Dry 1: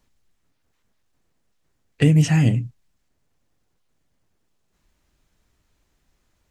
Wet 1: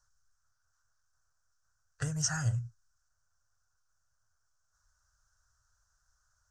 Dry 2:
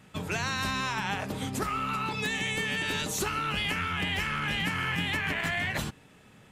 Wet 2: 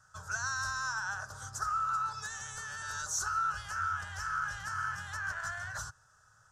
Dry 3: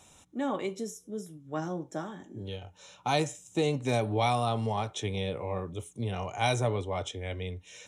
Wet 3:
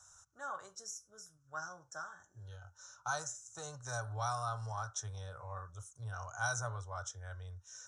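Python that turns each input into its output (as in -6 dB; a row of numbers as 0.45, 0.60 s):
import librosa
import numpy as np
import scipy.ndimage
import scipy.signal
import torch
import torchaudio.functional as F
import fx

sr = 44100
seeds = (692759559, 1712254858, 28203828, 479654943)

y = fx.curve_eq(x, sr, hz=(110.0, 230.0, 370.0, 600.0, 880.0, 1500.0, 2200.0, 3800.0, 5800.0, 13000.0), db=(0, -27, -21, -6, -3, 13, -22, -8, 12, -7))
y = y * 10.0 ** (-8.0 / 20.0)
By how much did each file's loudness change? -15.0, -5.5, -10.0 LU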